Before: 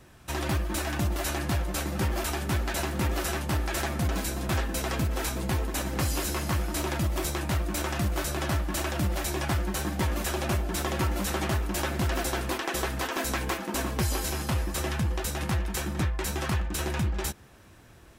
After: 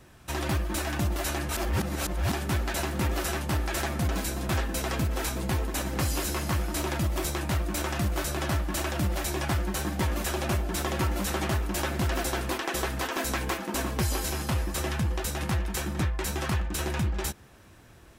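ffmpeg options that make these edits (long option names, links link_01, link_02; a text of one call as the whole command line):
ffmpeg -i in.wav -filter_complex "[0:a]asplit=3[link_01][link_02][link_03];[link_01]atrim=end=1.492[link_04];[link_02]atrim=start=1.488:end=2.322,asetpts=PTS-STARTPTS,areverse[link_05];[link_03]atrim=start=2.318[link_06];[link_04][link_05]acrossfade=duration=0.004:curve1=hsin:curve2=hsin[link_07];[link_07][link_06]acrossfade=duration=0.004:curve1=hsin:curve2=hsin" out.wav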